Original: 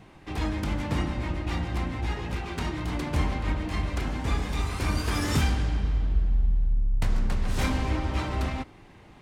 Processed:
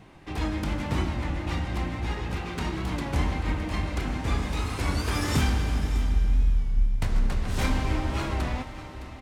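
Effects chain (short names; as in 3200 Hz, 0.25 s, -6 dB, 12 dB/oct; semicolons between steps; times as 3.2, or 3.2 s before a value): on a send: echo 0.604 s -13.5 dB; on the sum: Schroeder reverb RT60 3.9 s, combs from 25 ms, DRR 9 dB; record warp 33 1/3 rpm, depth 100 cents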